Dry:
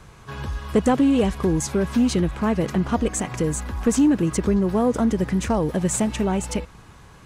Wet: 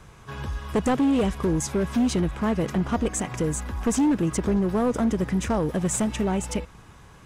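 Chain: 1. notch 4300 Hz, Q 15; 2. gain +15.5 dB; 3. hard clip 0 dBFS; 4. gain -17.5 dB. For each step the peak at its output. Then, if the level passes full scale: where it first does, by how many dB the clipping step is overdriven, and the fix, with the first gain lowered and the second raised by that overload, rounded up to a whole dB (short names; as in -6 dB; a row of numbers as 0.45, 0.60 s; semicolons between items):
-10.0, +5.5, 0.0, -17.5 dBFS; step 2, 5.5 dB; step 2 +9.5 dB, step 4 -11.5 dB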